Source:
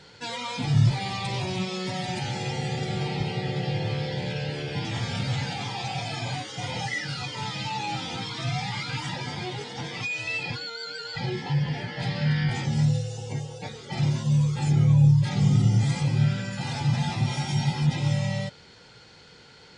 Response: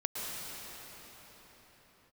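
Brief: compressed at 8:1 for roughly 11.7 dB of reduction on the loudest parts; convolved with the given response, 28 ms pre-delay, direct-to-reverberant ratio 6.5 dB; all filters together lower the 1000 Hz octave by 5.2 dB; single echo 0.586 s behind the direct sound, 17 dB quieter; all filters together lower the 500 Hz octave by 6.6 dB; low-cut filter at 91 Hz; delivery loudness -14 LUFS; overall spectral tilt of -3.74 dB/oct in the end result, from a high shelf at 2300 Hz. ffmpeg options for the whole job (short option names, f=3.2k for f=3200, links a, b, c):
-filter_complex "[0:a]highpass=91,equalizer=f=500:t=o:g=-8,equalizer=f=1k:t=o:g=-5,highshelf=f=2.3k:g=7.5,acompressor=threshold=-28dB:ratio=8,aecho=1:1:586:0.141,asplit=2[a][b];[1:a]atrim=start_sample=2205,adelay=28[c];[b][c]afir=irnorm=-1:irlink=0,volume=-11.5dB[d];[a][d]amix=inputs=2:normalize=0,volume=16.5dB"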